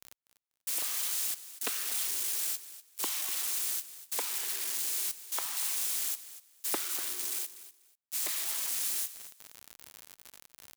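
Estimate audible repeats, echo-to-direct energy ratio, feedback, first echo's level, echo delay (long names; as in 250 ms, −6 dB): 2, −15.0 dB, 19%, −15.0 dB, 244 ms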